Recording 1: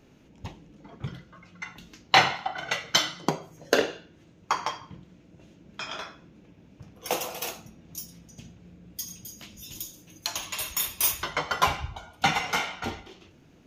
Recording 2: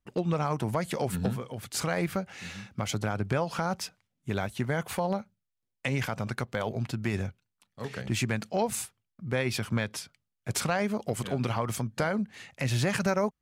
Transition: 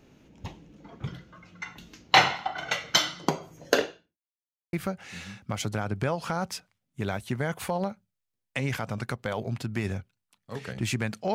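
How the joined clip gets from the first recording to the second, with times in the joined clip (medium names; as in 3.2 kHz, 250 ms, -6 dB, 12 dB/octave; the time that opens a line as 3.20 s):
recording 1
3.73–4.19 s: fade out quadratic
4.19–4.73 s: mute
4.73 s: go over to recording 2 from 2.02 s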